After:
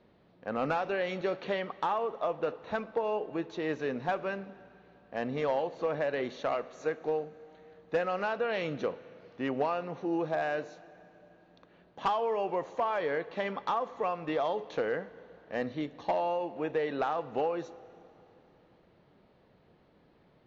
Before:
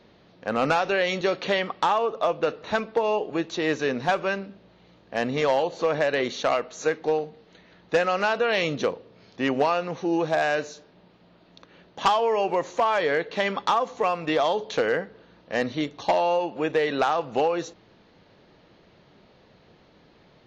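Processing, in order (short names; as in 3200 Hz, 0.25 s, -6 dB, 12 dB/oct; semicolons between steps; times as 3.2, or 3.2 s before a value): LPF 1700 Hz 6 dB/oct; plate-style reverb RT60 3.2 s, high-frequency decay 0.95×, DRR 17 dB; gain -7 dB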